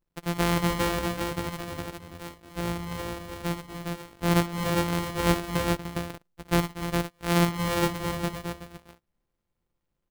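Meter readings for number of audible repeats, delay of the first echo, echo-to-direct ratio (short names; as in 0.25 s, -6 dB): 4, 59 ms, -2.0 dB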